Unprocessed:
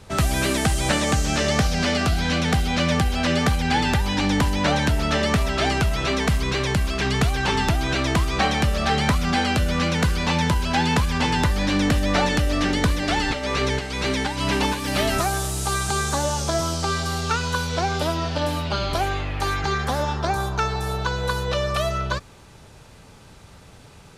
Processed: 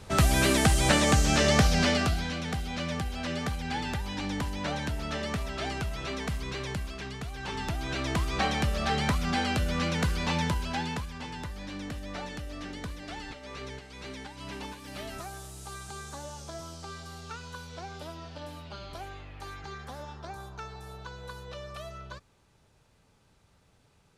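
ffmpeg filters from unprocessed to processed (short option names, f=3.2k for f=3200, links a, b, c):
-af "volume=10dB,afade=t=out:st=1.76:d=0.57:silence=0.298538,afade=t=out:st=6.72:d=0.49:silence=0.473151,afade=t=in:st=7.21:d=1.15:silence=0.266073,afade=t=out:st=10.39:d=0.74:silence=0.281838"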